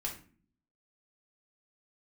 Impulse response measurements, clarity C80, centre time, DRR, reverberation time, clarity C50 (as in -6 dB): 13.5 dB, 20 ms, -2.5 dB, 0.45 s, 8.5 dB